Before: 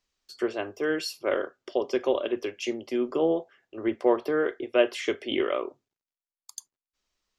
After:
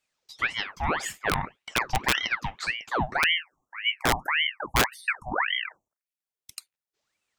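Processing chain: spectral selection erased 3.22–6.19 s, 800–6000 Hz; integer overflow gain 14.5 dB; ring modulator with a swept carrier 1.5 kHz, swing 75%, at 1.8 Hz; trim +3 dB

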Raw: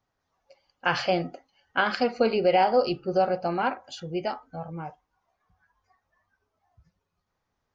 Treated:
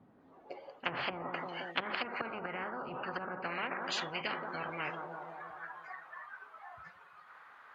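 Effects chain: peaking EQ 5.7 kHz -14.5 dB 0.73 oct; on a send: bucket-brigade echo 175 ms, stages 1024, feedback 59%, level -17.5 dB; on the sum: low-pass that closes with the level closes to 310 Hz, closed at -20 dBFS; tilt EQ +2 dB/octave; band-pass sweep 210 Hz -> 1.4 kHz, 0.06–1.58 s; spectrum-flattening compressor 10:1; trim +1 dB

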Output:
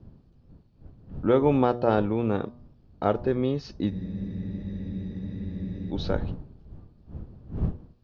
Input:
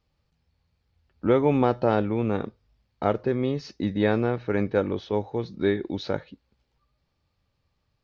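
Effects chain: wind noise 140 Hz -38 dBFS; low-pass 5.8 kHz 12 dB/octave; peaking EQ 2.1 kHz -6.5 dB 0.38 oct; de-hum 120.3 Hz, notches 10; spectral freeze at 3.93 s, 1.99 s

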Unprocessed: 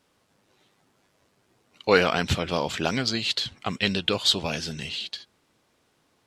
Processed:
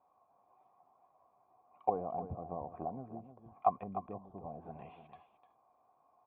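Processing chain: low-pass that closes with the level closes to 300 Hz, closed at -23 dBFS; cascade formant filter a; delay 301 ms -11 dB; trim +10.5 dB

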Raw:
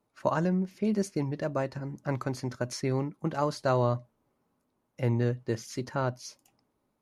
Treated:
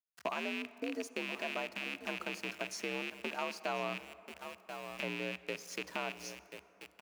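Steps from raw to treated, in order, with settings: rattle on loud lows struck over -37 dBFS, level -20 dBFS; high-pass 350 Hz 6 dB/octave; delay 1035 ms -15.5 dB; small samples zeroed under -46 dBFS; compression 2:1, threshold -38 dBFS, peak gain reduction 9 dB; frequency shift +62 Hz; on a send at -16 dB: reverberation RT60 3.3 s, pre-delay 38 ms; on the sum: trim -1.5 dB

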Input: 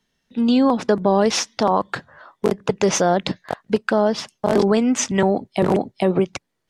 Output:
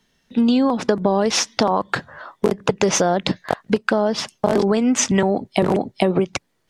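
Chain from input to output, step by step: compression, threshold -21 dBFS, peak gain reduction 9.5 dB; trim +7 dB

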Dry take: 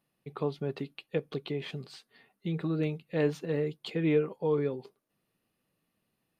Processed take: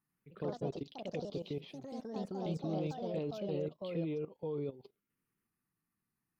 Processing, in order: touch-sensitive phaser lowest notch 570 Hz, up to 1.7 kHz, full sweep at -32 dBFS; level held to a coarse grid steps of 17 dB; ever faster or slower copies 91 ms, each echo +3 st, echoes 3; trim -3 dB

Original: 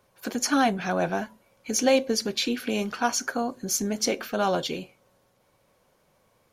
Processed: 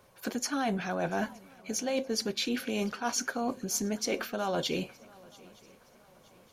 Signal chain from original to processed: reverse; compression 10:1, threshold -32 dBFS, peak gain reduction 16 dB; reverse; shuffle delay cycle 918 ms, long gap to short 3:1, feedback 41%, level -24 dB; trim +4 dB

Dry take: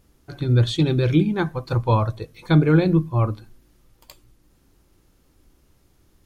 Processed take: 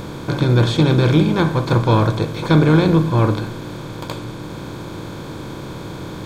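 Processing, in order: spectral levelling over time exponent 0.4; harmony voices +7 st -18 dB

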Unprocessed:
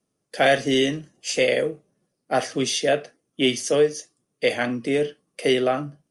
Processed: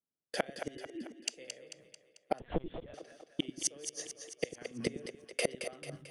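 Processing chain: 0.75–1.28 s: formants replaced by sine waves; gate -46 dBFS, range -22 dB; gain riding within 5 dB 0.5 s; inverted gate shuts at -18 dBFS, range -34 dB; saturation -15 dBFS, distortion -26 dB; two-band feedback delay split 400 Hz, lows 92 ms, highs 221 ms, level -8 dB; 2.40–2.94 s: LPC vocoder at 8 kHz pitch kept; 3.97–4.68 s: three bands compressed up and down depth 40%; trim +2.5 dB

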